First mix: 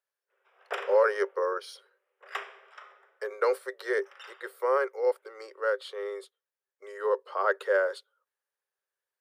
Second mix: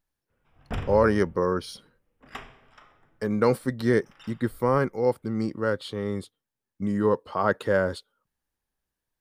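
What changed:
background −6.5 dB
master: remove Chebyshev high-pass with heavy ripple 380 Hz, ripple 6 dB

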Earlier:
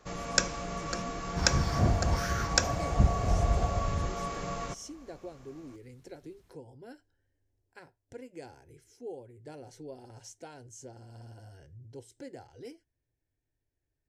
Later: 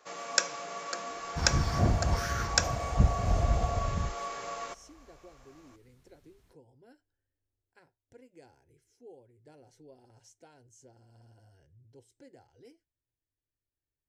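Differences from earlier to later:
speech −10.0 dB
first sound: add high-pass filter 490 Hz 12 dB per octave

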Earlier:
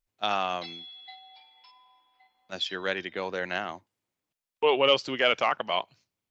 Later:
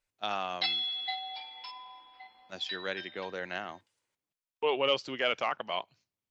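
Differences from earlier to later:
speech −6.0 dB
background +11.5 dB

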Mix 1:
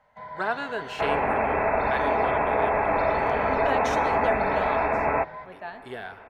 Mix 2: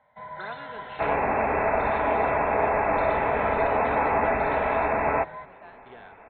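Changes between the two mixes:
speech −11.5 dB
master: add linear-phase brick-wall low-pass 4,200 Hz

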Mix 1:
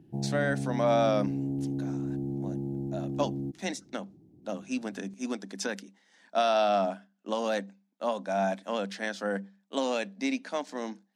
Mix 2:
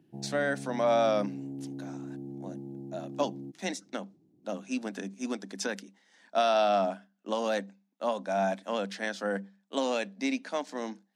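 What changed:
background −6.5 dB
master: add high-pass filter 150 Hz

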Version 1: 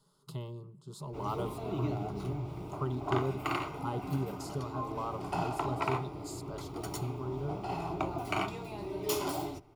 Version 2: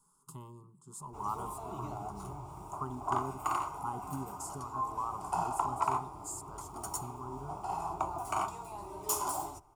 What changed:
speech: add graphic EQ with 15 bands 250 Hz +11 dB, 630 Hz −10 dB, 4,000 Hz −7 dB
master: add octave-band graphic EQ 125/250/500/1,000/2,000/4,000/8,000 Hz −8/−10/−9/+11/−12/−11/+12 dB

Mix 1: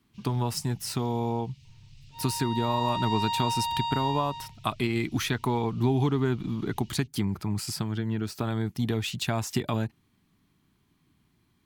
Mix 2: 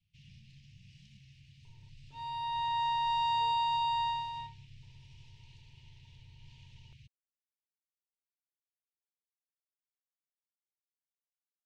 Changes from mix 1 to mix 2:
speech: muted
master: add bass and treble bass −3 dB, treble −8 dB

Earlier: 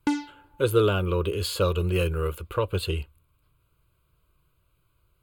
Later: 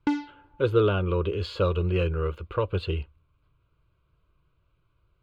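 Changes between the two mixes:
background: remove high-frequency loss of the air 54 metres
master: add high-frequency loss of the air 210 metres

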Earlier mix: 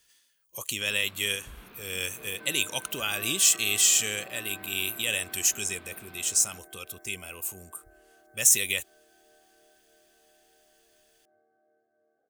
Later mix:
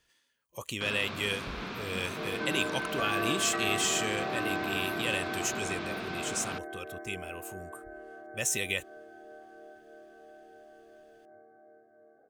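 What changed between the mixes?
speech −11.5 dB
first sound: remove high-frequency loss of the air 330 metres
master: remove first-order pre-emphasis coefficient 0.8

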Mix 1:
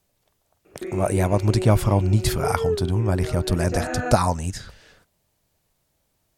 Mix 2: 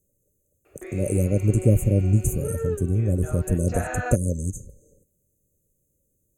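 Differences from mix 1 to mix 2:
speech: add linear-phase brick-wall band-stop 600–6,100 Hz
background: add high-pass filter 520 Hz

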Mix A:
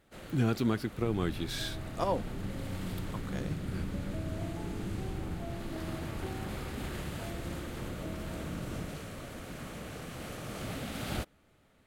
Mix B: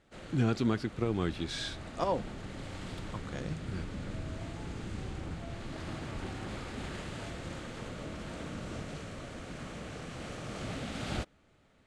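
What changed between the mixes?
second sound: add tilt shelving filter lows −8.5 dB, about 1,500 Hz
master: add low-pass filter 8,300 Hz 24 dB per octave

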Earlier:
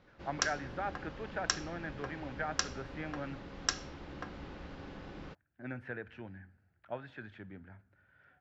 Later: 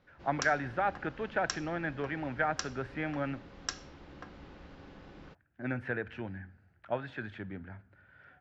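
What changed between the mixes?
speech +7.0 dB
background −4.5 dB

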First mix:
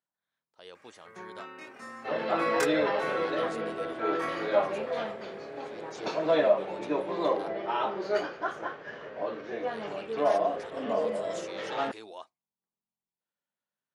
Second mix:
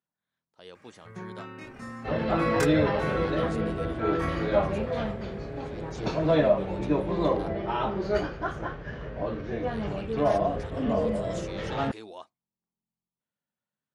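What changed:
speech: add high-pass filter 230 Hz 12 dB per octave
master: remove high-pass filter 400 Hz 12 dB per octave

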